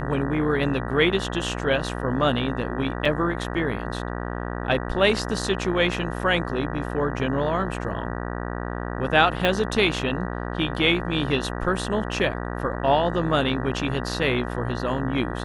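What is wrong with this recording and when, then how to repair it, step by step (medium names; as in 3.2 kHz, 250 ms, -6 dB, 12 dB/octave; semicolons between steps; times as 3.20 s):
buzz 60 Hz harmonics 32 -30 dBFS
3.05 s: dropout 4.1 ms
9.45 s: pop -9 dBFS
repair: de-click; de-hum 60 Hz, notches 32; interpolate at 3.05 s, 4.1 ms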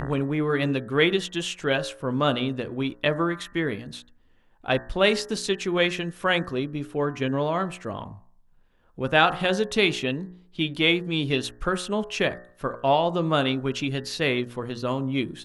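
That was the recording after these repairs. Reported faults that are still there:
9.45 s: pop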